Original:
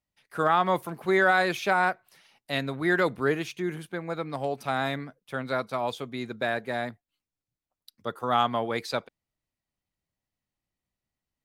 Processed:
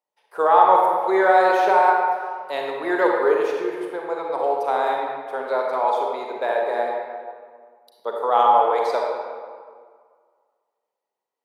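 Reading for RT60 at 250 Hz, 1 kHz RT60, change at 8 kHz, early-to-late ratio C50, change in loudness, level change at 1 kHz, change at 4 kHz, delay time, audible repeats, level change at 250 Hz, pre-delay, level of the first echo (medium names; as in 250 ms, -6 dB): 1.8 s, 1.9 s, no reading, 0.0 dB, +7.5 dB, +10.5 dB, -2.0 dB, no echo, no echo, +0.5 dB, 33 ms, no echo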